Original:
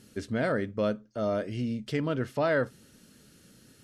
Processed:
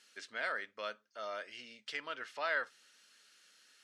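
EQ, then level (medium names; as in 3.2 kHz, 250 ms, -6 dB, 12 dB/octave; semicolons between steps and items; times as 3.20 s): high-pass 1.4 kHz 12 dB/octave; distance through air 71 m; +1.0 dB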